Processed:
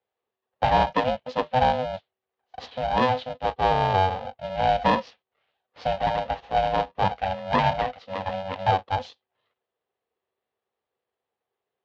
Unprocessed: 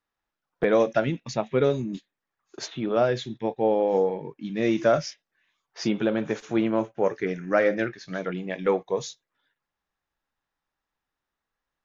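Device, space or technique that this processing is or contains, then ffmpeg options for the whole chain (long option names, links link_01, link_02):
ring modulator pedal into a guitar cabinet: -filter_complex "[0:a]asettb=1/sr,asplit=3[link_01][link_02][link_03];[link_01]atrim=end=4.944[link_04];[link_02]atrim=start=4.94:end=6.77,asetpts=PTS-STARTPTS,afade=type=in:duration=0.004:curve=qsin,afade=type=out:start_time=1.826:duration=0.004:curve=qsin,bass=frequency=250:gain=-3,treble=frequency=4000:gain=-5[link_05];[link_03]atrim=start=6.766[link_06];[link_04][link_05]acrossfade=duration=0.004:curve1=hsin:curve2=qsin[link_07];[link_07][link_06]acrossfade=duration=0.004:curve1=qsin:curve2=hsin,aeval=exprs='val(0)*sgn(sin(2*PI*380*n/s))':channel_layout=same,highpass=77,equalizer=frequency=170:width_type=q:width=4:gain=-8,equalizer=frequency=330:width_type=q:width=4:gain=-7,equalizer=frequency=480:width_type=q:width=4:gain=9,equalizer=frequency=750:width_type=q:width=4:gain=6,equalizer=frequency=1400:width_type=q:width=4:gain=-7,equalizer=frequency=2200:width_type=q:width=4:gain=-6,lowpass=frequency=3700:width=0.5412,lowpass=frequency=3700:width=1.3066"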